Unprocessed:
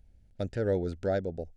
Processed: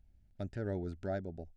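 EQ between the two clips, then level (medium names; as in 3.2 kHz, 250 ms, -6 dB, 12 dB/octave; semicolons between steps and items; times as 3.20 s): peaking EQ 490 Hz -14.5 dB 0.21 oct; treble shelf 4.7 kHz -5.5 dB; dynamic bell 3.4 kHz, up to -4 dB, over -55 dBFS, Q 1.1; -5.5 dB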